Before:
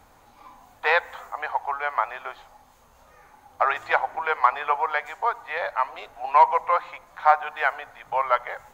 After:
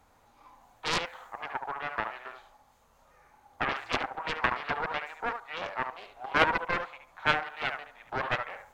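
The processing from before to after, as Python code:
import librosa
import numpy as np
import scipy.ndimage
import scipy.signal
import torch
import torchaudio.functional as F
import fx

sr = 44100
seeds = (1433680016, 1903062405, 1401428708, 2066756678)

p1 = x + fx.echo_feedback(x, sr, ms=72, feedback_pct=17, wet_db=-7.0, dry=0)
p2 = fx.doppler_dist(p1, sr, depth_ms=0.74)
y = p2 * librosa.db_to_amplitude(-8.5)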